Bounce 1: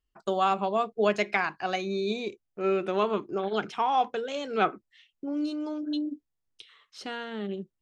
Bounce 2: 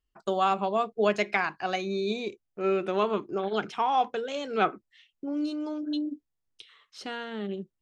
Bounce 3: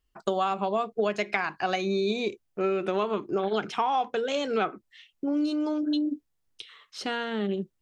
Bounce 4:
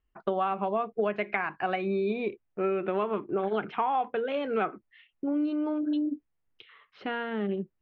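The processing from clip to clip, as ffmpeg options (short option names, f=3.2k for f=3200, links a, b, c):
-af anull
-af "acompressor=threshold=-29dB:ratio=6,volume=6dB"
-af "lowpass=f=2.6k:w=0.5412,lowpass=f=2.6k:w=1.3066,volume=-1.5dB"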